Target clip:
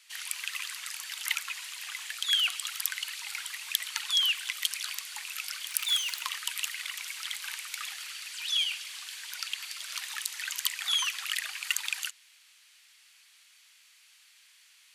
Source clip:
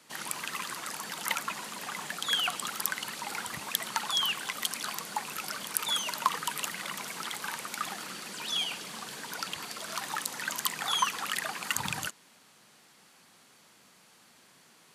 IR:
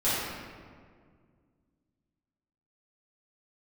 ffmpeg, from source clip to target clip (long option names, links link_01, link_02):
-filter_complex "[0:a]asettb=1/sr,asplit=3[link_01][link_02][link_03];[link_01]atrim=end=5.674[link_04];[link_02]atrim=start=5.67:end=6.22,asetpts=PTS-STARTPTS,afade=type=in:duration=0.004:curve=qsin,afade=type=out:start_time=0.546:duration=0.004:curve=qsin,acrusher=bits=3:mode=log:mix=0:aa=0.000001[link_05];[link_03]atrim=start=6.216[link_06];[link_04][link_05]acrossfade=duration=0.004:curve1=hsin:curve2=qsin[link_07];[link_07][link_06]acrossfade=duration=0.004:curve1=qsin:curve2=hsin,highpass=frequency=2400:width_type=q:width=1.5,asettb=1/sr,asplit=3[link_08][link_09][link_10];[link_08]atrim=end=6.884[link_11];[link_09]atrim=start=6.88:end=8.27,asetpts=PTS-STARTPTS,afade=type=in:duration=0.004:curve=qsin,afade=type=out:start_time=1.386:duration=0.004:curve=qsin,aeval=exprs='0.188*(cos(1*acos(clip(val(0)/0.188,-1,1)))-cos(1*PI/2))+0.00211*(cos(4*acos(clip(val(0)/0.188,-1,1)))-cos(4*PI/2))':channel_layout=same[link_12];[link_10]atrim=start=8.266[link_13];[link_11][link_12]acrossfade=duration=0.004:curve1=hsin:curve2=qsin[link_14];[link_14][link_13]acrossfade=duration=0.004:curve1=qsin:curve2=hsin"